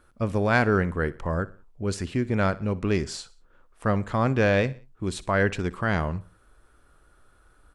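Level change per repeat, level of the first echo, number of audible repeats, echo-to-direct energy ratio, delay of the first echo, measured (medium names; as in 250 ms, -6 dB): -7.5 dB, -19.5 dB, 3, -18.5 dB, 61 ms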